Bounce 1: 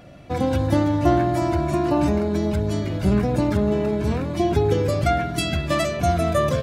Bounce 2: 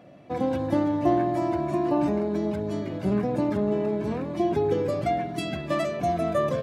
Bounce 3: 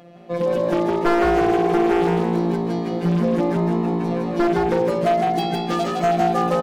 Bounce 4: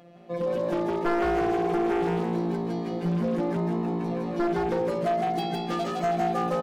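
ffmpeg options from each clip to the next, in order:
-af "highpass=180,highshelf=f=2.5k:g=-11,bandreject=f=1.4k:w=13,volume=-2.5dB"
-filter_complex "[0:a]afftfilt=real='hypot(re,im)*cos(PI*b)':imag='0':win_size=1024:overlap=0.75,aeval=exprs='0.1*(abs(mod(val(0)/0.1+3,4)-2)-1)':c=same,asplit=7[a][b][c][d][e][f][g];[b]adelay=160,afreqshift=56,volume=-3.5dB[h];[c]adelay=320,afreqshift=112,volume=-10.4dB[i];[d]adelay=480,afreqshift=168,volume=-17.4dB[j];[e]adelay=640,afreqshift=224,volume=-24.3dB[k];[f]adelay=800,afreqshift=280,volume=-31.2dB[l];[g]adelay=960,afreqshift=336,volume=-38.2dB[m];[a][h][i][j][k][l][m]amix=inputs=7:normalize=0,volume=8dB"
-af "asoftclip=type=tanh:threshold=-10.5dB,volume=-6dB"

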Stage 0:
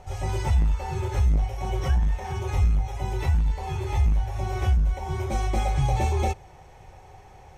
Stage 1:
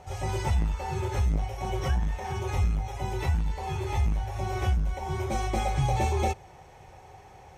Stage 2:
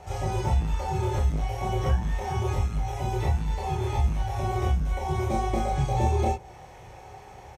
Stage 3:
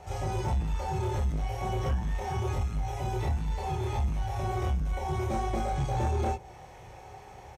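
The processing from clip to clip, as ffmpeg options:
-af "highpass=f=87:p=1"
-filter_complex "[0:a]acrossover=split=1000|2800[a][b][c];[a]acompressor=threshold=-25dB:ratio=4[d];[b]acompressor=threshold=-49dB:ratio=4[e];[c]acompressor=threshold=-51dB:ratio=4[f];[d][e][f]amix=inputs=3:normalize=0,asplit=2[g][h];[h]aecho=0:1:27|44:0.708|0.531[i];[g][i]amix=inputs=2:normalize=0,volume=2dB"
-af "asoftclip=type=tanh:threshold=-20dB,volume=-2dB"

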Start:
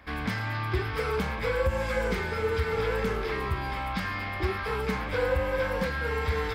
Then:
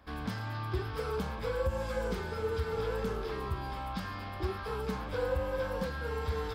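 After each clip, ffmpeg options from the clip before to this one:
-af "equalizer=f=2.1k:t=o:w=0.64:g=-11,volume=-5dB"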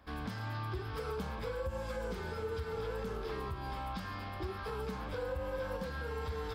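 -af "alimiter=level_in=4dB:limit=-24dB:level=0:latency=1:release=158,volume=-4dB,volume=-1.5dB"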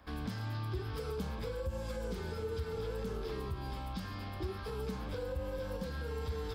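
-filter_complex "[0:a]acrossover=split=490|3000[a][b][c];[b]acompressor=threshold=-52dB:ratio=3[d];[a][d][c]amix=inputs=3:normalize=0,volume=2dB"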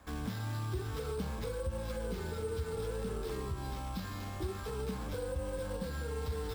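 -af "acrusher=samples=5:mix=1:aa=0.000001,volume=1dB"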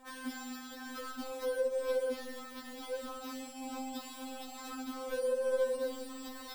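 -af "afftfilt=real='re*3.46*eq(mod(b,12),0)':imag='im*3.46*eq(mod(b,12),0)':win_size=2048:overlap=0.75,volume=4dB"

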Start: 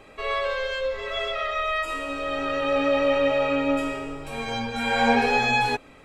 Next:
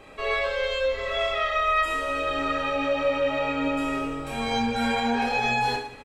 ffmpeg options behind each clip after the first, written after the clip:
-filter_complex "[0:a]alimiter=limit=-18dB:level=0:latency=1:release=173,asplit=2[a][b];[b]aecho=0:1:30|69|119.7|185.6|271.3:0.631|0.398|0.251|0.158|0.1[c];[a][c]amix=inputs=2:normalize=0"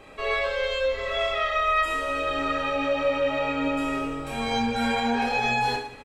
-af anull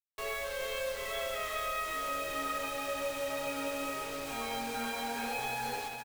-filter_complex "[0:a]acrossover=split=370|3400[a][b][c];[a]acompressor=threshold=-41dB:ratio=4[d];[b]acompressor=threshold=-29dB:ratio=4[e];[c]acompressor=threshold=-44dB:ratio=4[f];[d][e][f]amix=inputs=3:normalize=0,acrusher=bits=5:mix=0:aa=0.000001,aecho=1:1:420|840|1260|1680|2100|2520:0.473|0.246|0.128|0.0665|0.0346|0.018,volume=-7dB"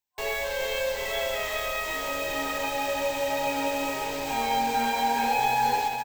-af "superequalizer=9b=2.24:10b=0.447:16b=0.398,volume=7.5dB"

